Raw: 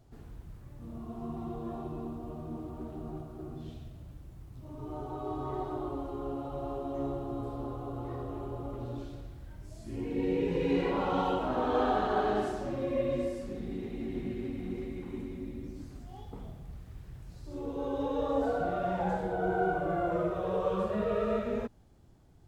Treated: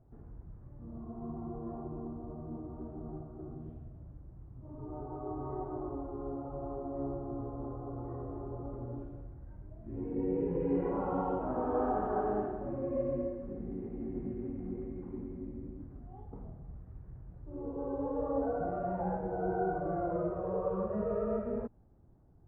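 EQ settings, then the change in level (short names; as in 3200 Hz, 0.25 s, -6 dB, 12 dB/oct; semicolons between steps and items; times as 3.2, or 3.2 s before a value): Bessel low-pass 1000 Hz, order 4; air absorption 79 m; -2.0 dB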